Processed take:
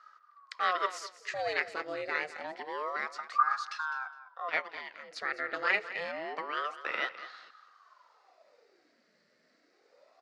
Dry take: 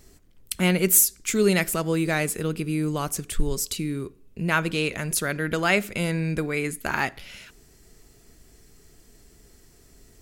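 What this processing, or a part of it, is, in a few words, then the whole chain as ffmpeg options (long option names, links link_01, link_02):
voice changer toy: -filter_complex "[0:a]asplit=3[link_01][link_02][link_03];[link_01]afade=type=out:start_time=4.48:duration=0.02[link_04];[link_02]agate=range=-9dB:threshold=-21dB:ratio=16:detection=peak,afade=type=in:start_time=4.48:duration=0.02,afade=type=out:start_time=5.12:duration=0.02[link_05];[link_03]afade=type=in:start_time=5.12:duration=0.02[link_06];[link_04][link_05][link_06]amix=inputs=3:normalize=0,aeval=exprs='val(0)*sin(2*PI*720*n/s+720*0.75/0.27*sin(2*PI*0.27*n/s))':channel_layout=same,highpass=490,equalizer=frequency=520:width_type=q:width=4:gain=3,equalizer=frequency=880:width_type=q:width=4:gain=-5,equalizer=frequency=1300:width_type=q:width=4:gain=7,equalizer=frequency=1900:width_type=q:width=4:gain=9,equalizer=frequency=3200:width_type=q:width=4:gain=-5,equalizer=frequency=4600:width_type=q:width=4:gain=5,lowpass=frequency=4700:width=0.5412,lowpass=frequency=4700:width=1.3066,aecho=1:1:206|412:0.188|0.0301,volume=-7.5dB"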